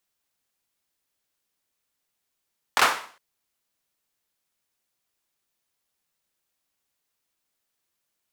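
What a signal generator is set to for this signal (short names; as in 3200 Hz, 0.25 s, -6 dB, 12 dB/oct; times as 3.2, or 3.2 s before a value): hand clap length 0.41 s, bursts 3, apart 23 ms, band 1100 Hz, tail 0.46 s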